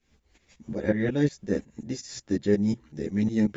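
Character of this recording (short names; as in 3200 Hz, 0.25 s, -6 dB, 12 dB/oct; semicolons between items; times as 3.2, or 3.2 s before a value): tremolo saw up 5.5 Hz, depth 85%; a shimmering, thickened sound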